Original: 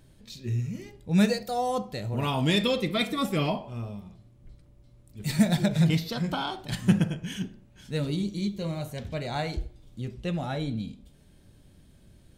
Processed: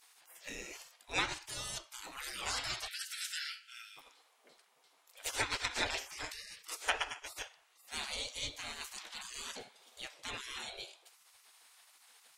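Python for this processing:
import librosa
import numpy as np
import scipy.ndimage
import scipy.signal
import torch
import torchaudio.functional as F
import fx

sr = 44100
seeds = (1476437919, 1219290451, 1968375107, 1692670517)

p1 = fx.spec_gate(x, sr, threshold_db=-30, keep='weak')
p2 = fx.brickwall_highpass(p1, sr, low_hz=1300.0, at=(2.87, 3.96), fade=0.02)
p3 = fx.rider(p2, sr, range_db=4, speed_s=2.0)
p4 = p2 + F.gain(torch.from_numpy(p3), -2.5).numpy()
p5 = fx.env_lowpass_down(p4, sr, base_hz=2800.0, full_db=-28.0)
y = F.gain(torch.from_numpy(p5), 2.0).numpy()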